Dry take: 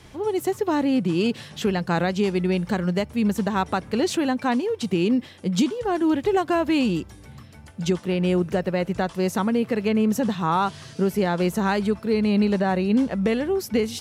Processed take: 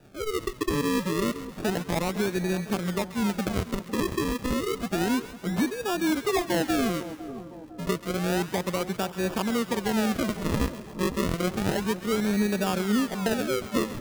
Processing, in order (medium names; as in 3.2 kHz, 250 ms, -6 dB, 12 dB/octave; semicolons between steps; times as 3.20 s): high-pass 140 Hz 12 dB/octave; decimation with a swept rate 41×, swing 100% 0.3 Hz; on a send: two-band feedback delay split 1.1 kHz, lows 505 ms, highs 135 ms, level -13 dB; on the sum: trim -4.5 dB